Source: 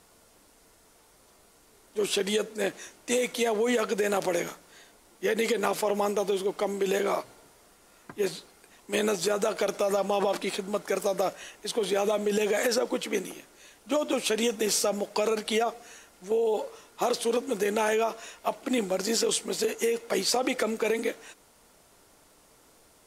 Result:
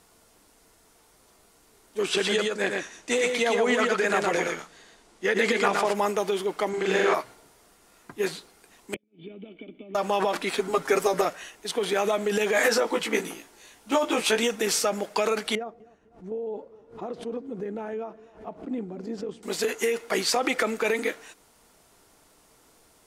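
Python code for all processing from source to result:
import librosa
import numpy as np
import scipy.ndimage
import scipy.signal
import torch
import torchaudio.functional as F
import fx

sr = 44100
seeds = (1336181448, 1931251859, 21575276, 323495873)

y = fx.chain(x, sr, fx.lowpass(hz=8100.0, slope=12),
    fx.echo_single(ms=116, db=-3.5), at=(2.03, 5.94))
y = fx.chain(y, sr, fx.lowpass(hz=6300.0, slope=12),
    fx.room_flutter(wall_m=7.3, rt60_s=1.0), at=(6.69, 7.14))
y = fx.chain(y, sr, fx.formant_cascade(vowel='i'),
    fx.gate_flip(shuts_db=-29.0, range_db=-40),
    fx.band_squash(depth_pct=70), at=(8.94, 9.95))
y = fx.chain(y, sr, fx.low_shelf(hz=480.0, db=5.0),
    fx.comb(ms=7.4, depth=0.85), at=(10.57, 11.25))
y = fx.chain(y, sr, fx.peak_eq(hz=880.0, db=3.5, octaves=0.21),
    fx.doubler(ms=18.0, db=-3.0), at=(12.53, 14.39))
y = fx.chain(y, sr, fx.bandpass_q(hz=110.0, q=0.54),
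    fx.echo_feedback(ms=249, feedback_pct=34, wet_db=-19.5),
    fx.pre_swell(db_per_s=140.0), at=(15.55, 19.43))
y = fx.notch(y, sr, hz=560.0, q=12.0)
y = fx.dynamic_eq(y, sr, hz=1600.0, q=0.8, threshold_db=-43.0, ratio=4.0, max_db=7)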